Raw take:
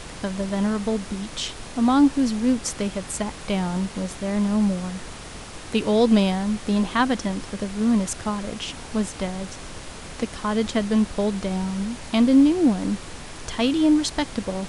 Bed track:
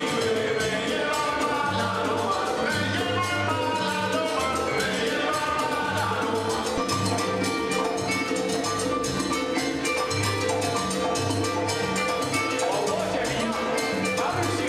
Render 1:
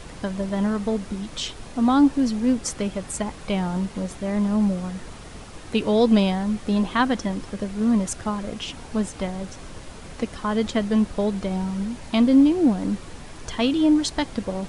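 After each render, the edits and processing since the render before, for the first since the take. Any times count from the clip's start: noise reduction 6 dB, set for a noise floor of -38 dBFS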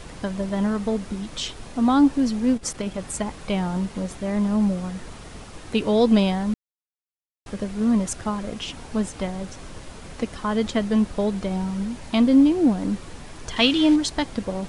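2.54–2.99 s: transformer saturation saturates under 210 Hz; 6.54–7.46 s: mute; 13.56–13.96 s: peaking EQ 3.2 kHz +10 dB 2.2 oct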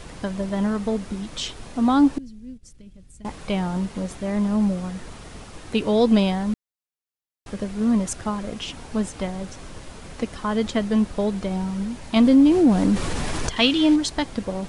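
2.18–3.25 s: amplifier tone stack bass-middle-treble 10-0-1; 12.16–13.49 s: level flattener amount 50%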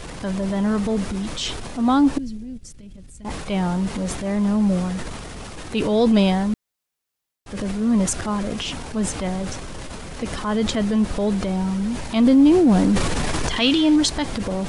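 transient shaper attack -7 dB, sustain +6 dB; in parallel at -2.5 dB: compression, threshold -27 dBFS, peak gain reduction 14 dB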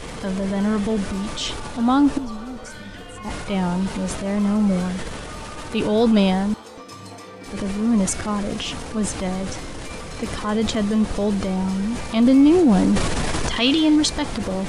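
add bed track -13.5 dB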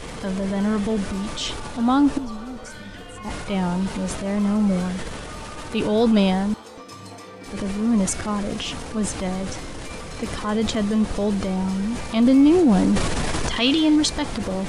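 trim -1 dB

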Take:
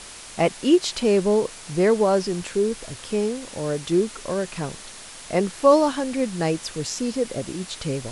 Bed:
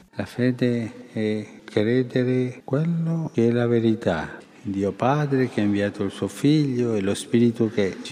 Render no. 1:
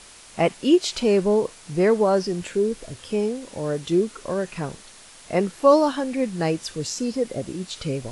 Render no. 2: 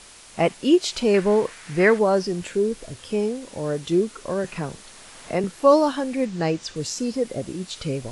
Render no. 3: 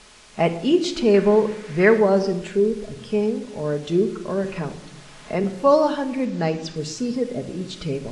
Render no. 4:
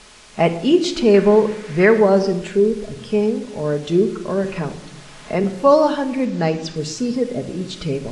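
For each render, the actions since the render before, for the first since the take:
noise print and reduce 6 dB
1.14–1.99 s: peaking EQ 1.8 kHz +11.5 dB 1.2 oct; 4.44–5.44 s: three bands compressed up and down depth 40%; 6.25–6.76 s: low-pass 7.5 kHz 24 dB/octave
distance through air 62 m; simulated room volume 3700 m³, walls furnished, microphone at 1.4 m
trim +3.5 dB; peak limiter -3 dBFS, peak gain reduction 3 dB

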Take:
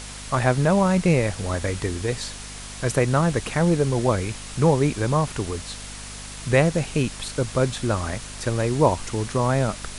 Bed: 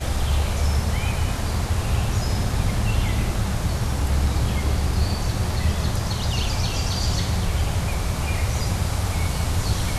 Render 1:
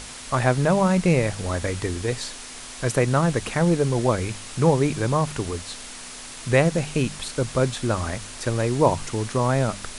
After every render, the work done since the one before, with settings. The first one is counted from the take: de-hum 50 Hz, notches 4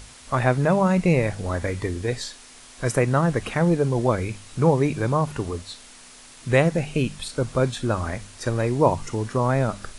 noise print and reduce 8 dB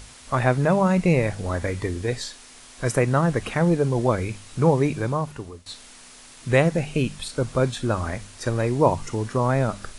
4.87–5.66 s: fade out, to -15.5 dB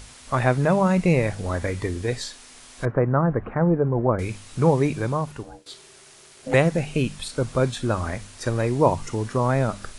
2.85–4.19 s: low-pass 1.5 kHz 24 dB/octave; 5.43–6.54 s: ring modulator 390 Hz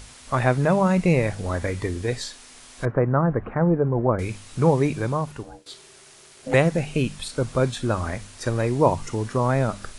no audible change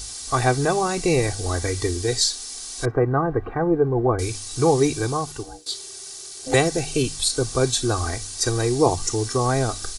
resonant high shelf 3.5 kHz +10.5 dB, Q 1.5; comb 2.6 ms, depth 77%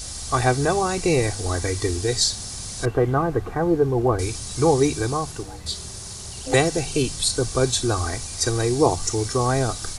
add bed -16.5 dB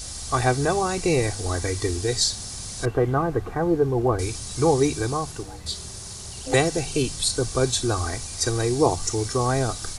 trim -1.5 dB

